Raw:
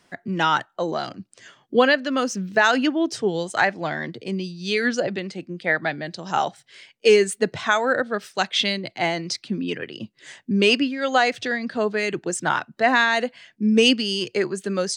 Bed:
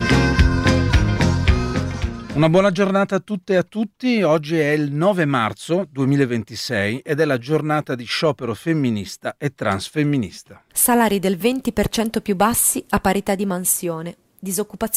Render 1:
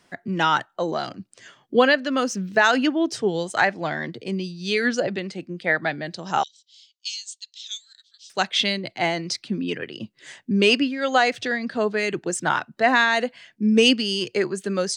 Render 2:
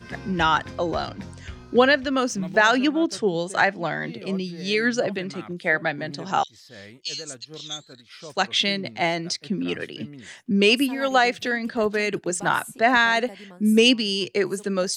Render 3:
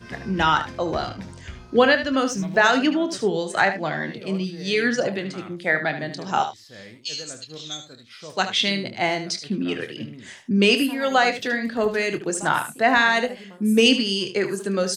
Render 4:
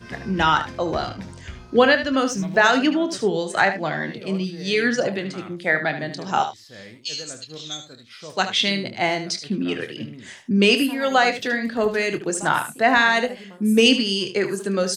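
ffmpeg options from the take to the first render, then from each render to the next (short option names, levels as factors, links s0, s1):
-filter_complex "[0:a]asettb=1/sr,asplit=3[s0][s1][s2];[s0]atrim=end=6.434[s3];[s1]atrim=start=6.43:end=8.3,asetpts=PTS-STARTPTS,afade=t=in:d=0.004:c=qsin,afade=t=out:st=1.866:d=0.004:c=qsin,asuperpass=centerf=5000:order=8:qfactor=1.2[s4];[s2]atrim=start=8.296[s5];[s3][s4]acrossfade=d=0.004:c1=hsin:c2=qsin[s6];[s6][s5]acrossfade=d=0.004:c1=qsin:c2=hsin"
-filter_complex "[1:a]volume=0.0708[s0];[0:a][s0]amix=inputs=2:normalize=0"
-filter_complex "[0:a]asplit=2[s0][s1];[s1]adelay=26,volume=0.266[s2];[s0][s2]amix=inputs=2:normalize=0,asplit=2[s3][s4];[s4]aecho=0:1:75:0.299[s5];[s3][s5]amix=inputs=2:normalize=0"
-af "volume=1.12"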